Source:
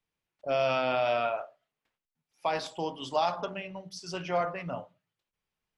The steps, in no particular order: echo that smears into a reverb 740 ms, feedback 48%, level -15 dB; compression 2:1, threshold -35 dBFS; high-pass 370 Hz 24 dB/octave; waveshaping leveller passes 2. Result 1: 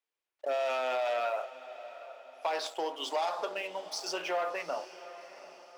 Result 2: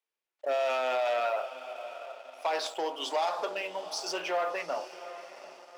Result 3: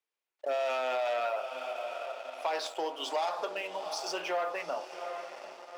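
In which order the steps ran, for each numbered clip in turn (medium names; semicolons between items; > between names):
waveshaping leveller > high-pass > compression > echo that smears into a reverb; compression > echo that smears into a reverb > waveshaping leveller > high-pass; echo that smears into a reverb > waveshaping leveller > high-pass > compression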